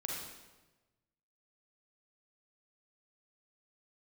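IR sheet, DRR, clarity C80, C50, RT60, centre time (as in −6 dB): −2.5 dB, 2.5 dB, −0.5 dB, 1.2 s, 72 ms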